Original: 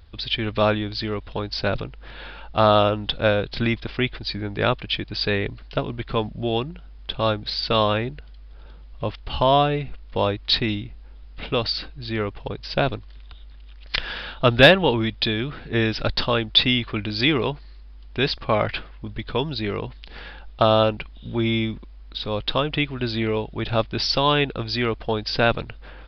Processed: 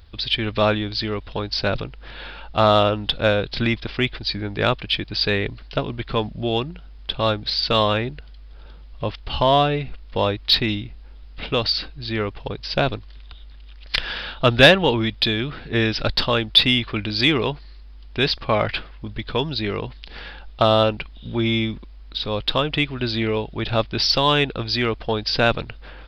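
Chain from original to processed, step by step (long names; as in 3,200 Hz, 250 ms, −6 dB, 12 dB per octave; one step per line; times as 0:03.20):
high-shelf EQ 3,300 Hz +5 dB
in parallel at −9 dB: soft clipping −12.5 dBFS, distortion −12 dB
on the sum: level −1.5 dB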